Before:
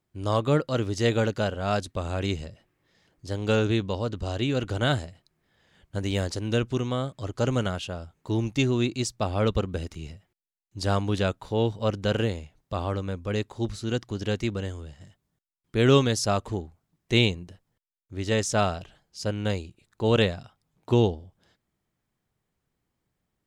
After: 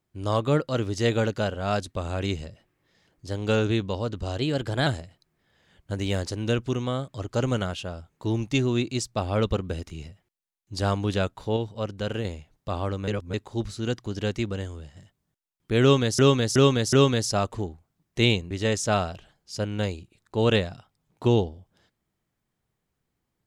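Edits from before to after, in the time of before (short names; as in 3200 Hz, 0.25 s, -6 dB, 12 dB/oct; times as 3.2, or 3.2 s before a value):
4.38–4.91 speed 109%
11.61–12.29 gain -4.5 dB
13.12–13.38 reverse
15.86–16.23 loop, 4 plays
17.44–18.17 cut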